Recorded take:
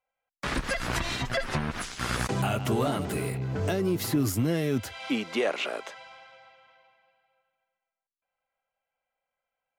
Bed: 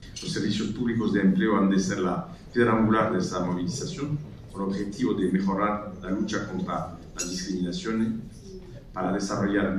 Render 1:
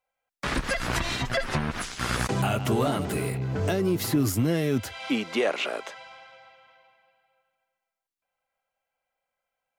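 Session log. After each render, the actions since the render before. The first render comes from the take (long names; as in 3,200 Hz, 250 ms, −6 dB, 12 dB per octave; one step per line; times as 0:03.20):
level +2 dB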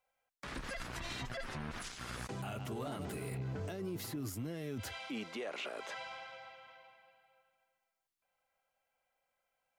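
reversed playback
downward compressor 5 to 1, threshold −36 dBFS, peak gain reduction 15.5 dB
reversed playback
brickwall limiter −33 dBFS, peak gain reduction 9.5 dB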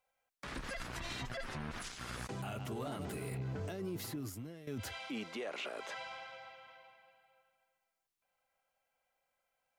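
0:04.09–0:04.67: fade out linear, to −12.5 dB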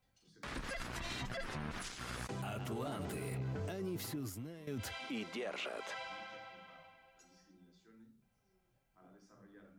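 mix in bed −35.5 dB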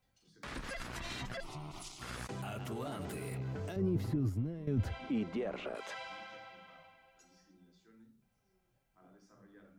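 0:01.40–0:02.02: phaser with its sweep stopped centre 330 Hz, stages 8
0:03.76–0:05.75: spectral tilt −4 dB per octave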